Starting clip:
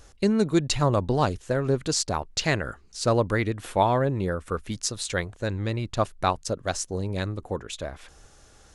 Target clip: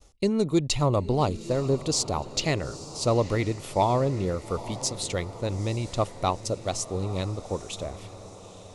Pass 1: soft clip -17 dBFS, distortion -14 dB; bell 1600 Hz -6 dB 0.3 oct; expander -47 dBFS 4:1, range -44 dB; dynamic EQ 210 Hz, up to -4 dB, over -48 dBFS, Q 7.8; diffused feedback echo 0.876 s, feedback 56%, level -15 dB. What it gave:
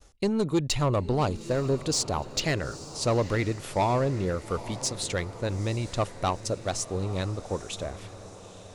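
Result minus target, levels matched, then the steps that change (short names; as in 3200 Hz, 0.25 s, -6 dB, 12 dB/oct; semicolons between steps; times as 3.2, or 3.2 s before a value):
soft clip: distortion +11 dB; 2000 Hz band +3.5 dB
change: soft clip -9 dBFS, distortion -25 dB; change: bell 1600 Hz -17 dB 0.3 oct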